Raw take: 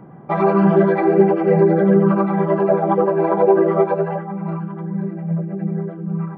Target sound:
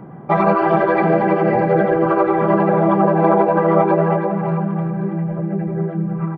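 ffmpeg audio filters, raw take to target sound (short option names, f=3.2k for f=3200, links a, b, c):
-af "aecho=1:1:329|658|987|1316|1645:0.422|0.173|0.0709|0.0291|0.0119,afftfilt=real='re*lt(hypot(re,im),1.12)':imag='im*lt(hypot(re,im),1.12)':win_size=1024:overlap=0.75,volume=4.5dB"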